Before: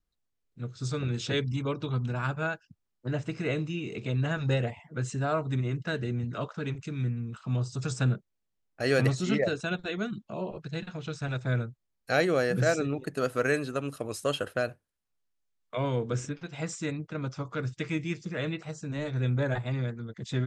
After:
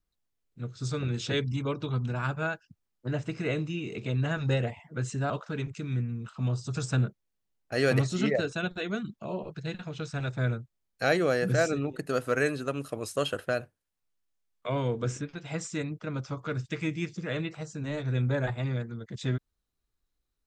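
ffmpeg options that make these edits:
ffmpeg -i in.wav -filter_complex "[0:a]asplit=2[link_01][link_02];[link_01]atrim=end=5.302[link_03];[link_02]atrim=start=6.378[link_04];[link_03][link_04]acrossfade=duration=0.004:curve1=hsin:curve2=hsin" out.wav

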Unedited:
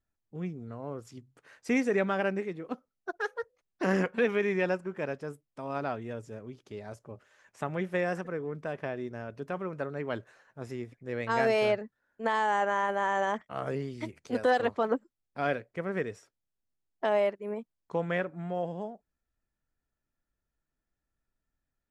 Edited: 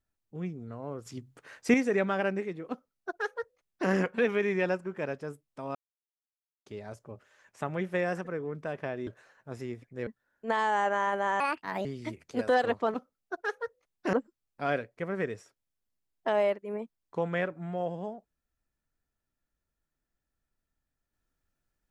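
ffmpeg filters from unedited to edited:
ffmpeg -i in.wav -filter_complex "[0:a]asplit=11[link_01][link_02][link_03][link_04][link_05][link_06][link_07][link_08][link_09][link_10][link_11];[link_01]atrim=end=1.062[link_12];[link_02]atrim=start=1.058:end=1.742,asetpts=PTS-STARTPTS,volume=6dB[link_13];[link_03]atrim=start=1.738:end=5.75,asetpts=PTS-STARTPTS,afade=type=out:start_time=4.008:duration=0.004:curve=hsin[link_14];[link_04]atrim=start=5.75:end=6.66,asetpts=PTS-STARTPTS,volume=0[link_15];[link_05]atrim=start=6.66:end=9.072,asetpts=PTS-STARTPTS,afade=type=in:duration=0.004:curve=hsin[link_16];[link_06]atrim=start=10.168:end=11.172[link_17];[link_07]atrim=start=11.828:end=13.164[link_18];[link_08]atrim=start=13.16:end=13.81,asetpts=PTS-STARTPTS,asetrate=63504,aresample=44100,atrim=end_sample=19906,asetpts=PTS-STARTPTS[link_19];[link_09]atrim=start=13.806:end=14.902[link_20];[link_10]atrim=start=2.698:end=3.892[link_21];[link_11]atrim=start=14.898[link_22];[link_12][link_13]acrossfade=duration=0.004:curve1=hsin:curve2=hsin[link_23];[link_14][link_15][link_16]concat=n=3:v=0:a=1[link_24];[link_23][link_24]acrossfade=duration=0.004:curve1=hsin:curve2=hsin[link_25];[link_25][link_17]acrossfade=duration=0.004:curve1=hsin:curve2=hsin[link_26];[link_26][link_18]acrossfade=duration=0.004:curve1=hsin:curve2=hsin[link_27];[link_27][link_19]acrossfade=duration=0.004:curve1=hsin:curve2=hsin[link_28];[link_28][link_20]acrossfade=duration=0.004:curve1=hsin:curve2=hsin[link_29];[link_29][link_21]acrossfade=duration=0.004:curve1=hsin:curve2=hsin[link_30];[link_30][link_22]acrossfade=duration=0.004:curve1=hsin:curve2=hsin" out.wav

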